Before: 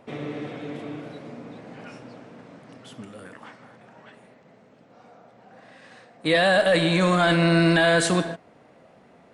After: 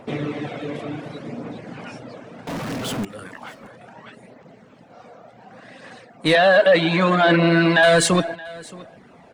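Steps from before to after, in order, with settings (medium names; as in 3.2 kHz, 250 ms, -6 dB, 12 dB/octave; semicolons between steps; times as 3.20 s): phaser 0.68 Hz, delay 1.9 ms, feedback 25%; reverb removal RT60 0.58 s; 2.47–3.05 s: power-law waveshaper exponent 0.35; in parallel at -4 dB: saturation -23 dBFS, distortion -8 dB; 6.35–7.83 s: on the sum: band-pass 200–3600 Hz; on a send: delay 623 ms -21.5 dB; on the sum: trim +3 dB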